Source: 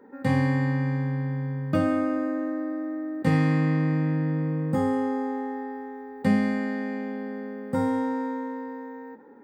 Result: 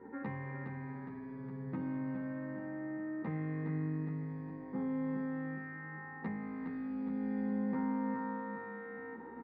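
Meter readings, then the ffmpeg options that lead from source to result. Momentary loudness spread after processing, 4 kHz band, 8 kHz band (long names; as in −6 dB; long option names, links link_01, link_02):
10 LU, below −25 dB, can't be measured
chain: -filter_complex "[0:a]acrossover=split=3000[link_01][link_02];[link_02]acompressor=threshold=-54dB:ratio=4:attack=1:release=60[link_03];[link_01][link_03]amix=inputs=2:normalize=0,highshelf=frequency=3200:gain=-11.5,bandreject=frequency=414.8:width_type=h:width=4,bandreject=frequency=829.6:width_type=h:width=4,bandreject=frequency=1244.4:width_type=h:width=4,bandreject=frequency=1659.2:width_type=h:width=4,bandreject=frequency=2074:width_type=h:width=4,bandreject=frequency=2488.8:width_type=h:width=4,bandreject=frequency=2903.6:width_type=h:width=4,bandreject=frequency=3318.4:width_type=h:width=4,bandreject=frequency=3733.2:width_type=h:width=4,bandreject=frequency=4148:width_type=h:width=4,bandreject=frequency=4562.8:width_type=h:width=4,bandreject=frequency=4977.6:width_type=h:width=4,bandreject=frequency=5392.4:width_type=h:width=4,bandreject=frequency=5807.2:width_type=h:width=4,bandreject=frequency=6222:width_type=h:width=4,bandreject=frequency=6636.8:width_type=h:width=4,bandreject=frequency=7051.6:width_type=h:width=4,bandreject=frequency=7466.4:width_type=h:width=4,bandreject=frequency=7881.2:width_type=h:width=4,bandreject=frequency=8296:width_type=h:width=4,bandreject=frequency=8710.8:width_type=h:width=4,bandreject=frequency=9125.6:width_type=h:width=4,bandreject=frequency=9540.4:width_type=h:width=4,bandreject=frequency=9955.2:width_type=h:width=4,bandreject=frequency=10370:width_type=h:width=4,bandreject=frequency=10784.8:width_type=h:width=4,bandreject=frequency=11199.6:width_type=h:width=4,bandreject=frequency=11614.4:width_type=h:width=4,bandreject=frequency=12029.2:width_type=h:width=4,bandreject=frequency=12444:width_type=h:width=4,bandreject=frequency=12858.8:width_type=h:width=4,bandreject=frequency=13273.6:width_type=h:width=4,bandreject=frequency=13688.4:width_type=h:width=4,bandreject=frequency=14103.2:width_type=h:width=4,bandreject=frequency=14518:width_type=h:width=4,bandreject=frequency=14932.8:width_type=h:width=4,acompressor=threshold=-36dB:ratio=12,aeval=exprs='val(0)+0.00158*(sin(2*PI*60*n/s)+sin(2*PI*2*60*n/s)/2+sin(2*PI*3*60*n/s)/3+sin(2*PI*4*60*n/s)/4+sin(2*PI*5*60*n/s)/5)':channel_layout=same,aeval=exprs='(tanh(35.5*val(0)+0.5)-tanh(0.5))/35.5':channel_layout=same,highpass=120,equalizer=frequency=200:width_type=q:width=4:gain=6,equalizer=frequency=360:width_type=q:width=4:gain=4,equalizer=frequency=600:width_type=q:width=4:gain=-7,equalizer=frequency=970:width_type=q:width=4:gain=5,equalizer=frequency=2000:width_type=q:width=4:gain=6,equalizer=frequency=3100:width_type=q:width=4:gain=-7,lowpass=frequency=4100:width=0.5412,lowpass=frequency=4100:width=1.3066,aecho=1:1:413|826|1239|1652|2065|2478|2891:0.447|0.241|0.13|0.0703|0.038|0.0205|0.0111,asplit=2[link_04][link_05];[link_05]adelay=11,afreqshift=0.36[link_06];[link_04][link_06]amix=inputs=2:normalize=1,volume=4dB"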